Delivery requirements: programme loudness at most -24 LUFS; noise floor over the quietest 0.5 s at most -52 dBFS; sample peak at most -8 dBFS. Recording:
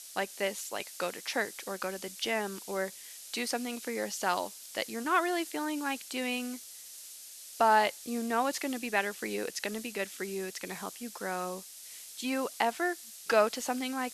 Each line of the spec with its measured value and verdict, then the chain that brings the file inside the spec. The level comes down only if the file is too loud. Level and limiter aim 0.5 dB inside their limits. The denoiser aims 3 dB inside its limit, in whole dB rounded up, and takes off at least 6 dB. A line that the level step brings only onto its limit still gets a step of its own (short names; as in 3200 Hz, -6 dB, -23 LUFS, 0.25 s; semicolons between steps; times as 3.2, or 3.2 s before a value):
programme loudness -32.5 LUFS: OK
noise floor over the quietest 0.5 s -48 dBFS: fail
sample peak -11.5 dBFS: OK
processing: denoiser 7 dB, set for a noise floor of -48 dBFS